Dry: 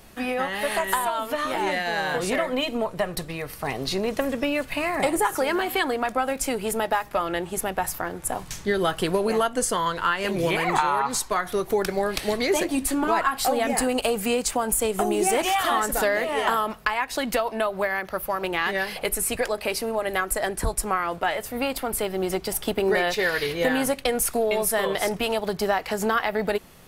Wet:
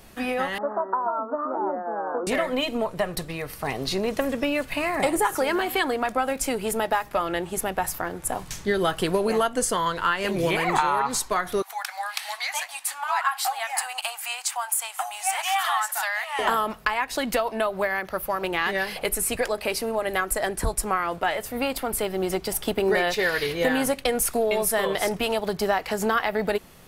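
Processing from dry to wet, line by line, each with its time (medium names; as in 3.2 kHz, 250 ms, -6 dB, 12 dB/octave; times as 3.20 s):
0.58–2.27 s: Chebyshev band-pass 210–1400 Hz, order 5
11.62–16.39 s: elliptic high-pass 780 Hz, stop band 50 dB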